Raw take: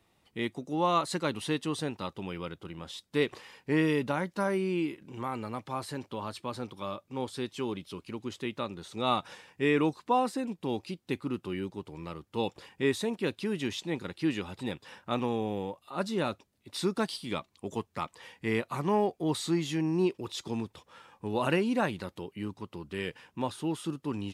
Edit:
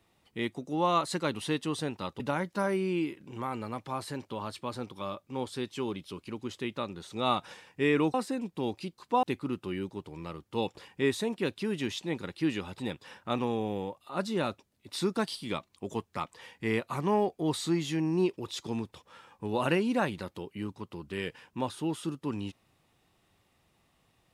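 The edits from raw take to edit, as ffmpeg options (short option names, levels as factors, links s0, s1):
-filter_complex "[0:a]asplit=5[s0][s1][s2][s3][s4];[s0]atrim=end=2.202[s5];[s1]atrim=start=4.008:end=9.952[s6];[s2]atrim=start=10.198:end=11.042[s7];[s3]atrim=start=9.948:end=10.202[s8];[s4]atrim=start=11.038[s9];[s5][s6]acrossfade=d=0.004:c1=hsin:c2=hsin[s10];[s10][s7]acrossfade=d=0.004:c1=hsin:c2=hsin[s11];[s11][s8]acrossfade=d=0.004:c1=hsin:c2=hsin[s12];[s12][s9]acrossfade=d=0.004:c1=hsin:c2=hsin"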